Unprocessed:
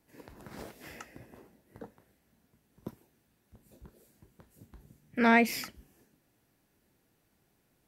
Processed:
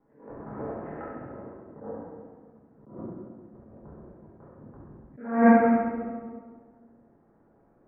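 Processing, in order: Bessel low-pass 880 Hz, order 6; low shelf 190 Hz -9.5 dB; thinning echo 68 ms, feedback 67%, high-pass 540 Hz, level -5 dB; reverb RT60 1.6 s, pre-delay 4 ms, DRR -7 dB; dynamic EQ 570 Hz, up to -4 dB, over -39 dBFS, Q 0.99; notches 60/120/180/240 Hz; attack slew limiter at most 110 dB/s; gain +6.5 dB

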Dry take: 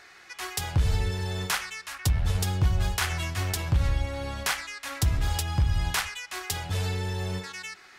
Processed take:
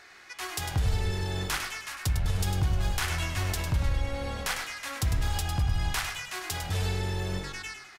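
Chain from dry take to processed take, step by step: limiter -18.5 dBFS, peak gain reduction 3.5 dB; on a send: frequency-shifting echo 0.102 s, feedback 42%, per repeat -45 Hz, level -7.5 dB; on the sum: gain -1 dB

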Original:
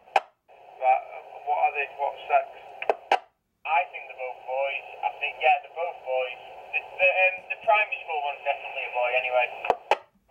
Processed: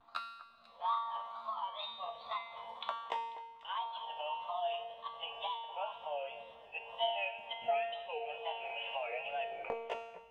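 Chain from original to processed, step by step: gliding pitch shift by +7 st ending unshifted; wow and flutter 150 cents; rotary speaker horn 0.65 Hz; compressor, threshold -31 dBFS, peak gain reduction 12 dB; high shelf 3300 Hz -10 dB; resonator 230 Hz, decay 0.98 s, mix 90%; on a send: echo with dull and thin repeats by turns 0.246 s, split 1900 Hz, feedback 55%, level -13.5 dB; on the sum: gain +14 dB

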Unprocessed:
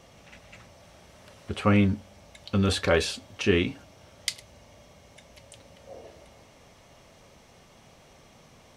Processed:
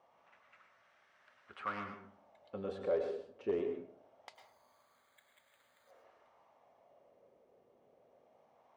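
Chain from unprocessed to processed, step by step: wavefolder -14.5 dBFS; wah 0.23 Hz 460–1600 Hz, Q 2.3; 4.35–5.91 careless resampling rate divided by 8×, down filtered, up hold; plate-style reverb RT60 0.55 s, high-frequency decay 0.55×, pre-delay 90 ms, DRR 5.5 dB; gain -7 dB

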